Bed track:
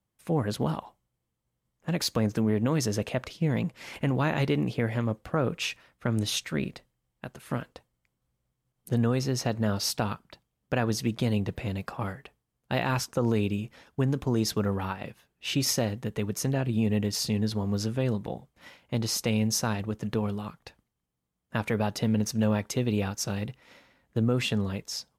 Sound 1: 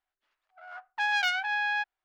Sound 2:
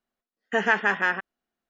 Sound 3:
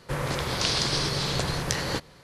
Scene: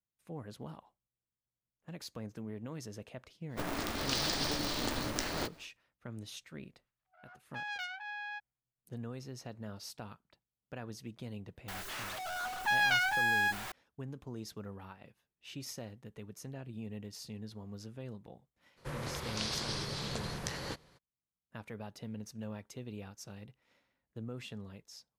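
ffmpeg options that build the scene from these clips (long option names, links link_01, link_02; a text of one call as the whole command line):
ffmpeg -i bed.wav -i cue0.wav -i cue1.wav -i cue2.wav -filter_complex "[3:a]asplit=2[link_01][link_02];[1:a]asplit=2[link_03][link_04];[0:a]volume=-17.5dB[link_05];[link_01]aeval=exprs='val(0)*sgn(sin(2*PI*150*n/s))':channel_layout=same[link_06];[link_04]aeval=exprs='val(0)+0.5*0.0251*sgn(val(0))':channel_layout=same[link_07];[link_06]atrim=end=2.23,asetpts=PTS-STARTPTS,volume=-8dB,afade=type=in:duration=0.1,afade=type=out:start_time=2.13:duration=0.1,adelay=3480[link_08];[link_03]atrim=end=2.04,asetpts=PTS-STARTPTS,volume=-13.5dB,afade=type=in:duration=0.004:curve=hsin,afade=type=out:start_time=2.036:duration=0.004:curve=hsin,adelay=6560[link_09];[link_07]atrim=end=2.04,asetpts=PTS-STARTPTS,volume=-3dB,afade=type=in:duration=0.004:curve=hsin,afade=type=out:start_time=2.036:duration=0.004:curve=hsin,adelay=11680[link_10];[link_02]atrim=end=2.23,asetpts=PTS-STARTPTS,volume=-11.5dB,afade=type=in:duration=0.02,afade=type=out:start_time=2.21:duration=0.02,adelay=827316S[link_11];[link_05][link_08][link_09][link_10][link_11]amix=inputs=5:normalize=0" out.wav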